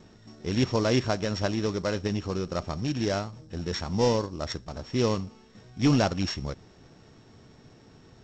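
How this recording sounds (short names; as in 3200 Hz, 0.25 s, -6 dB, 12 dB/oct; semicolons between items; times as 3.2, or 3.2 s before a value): a buzz of ramps at a fixed pitch in blocks of 8 samples; G.722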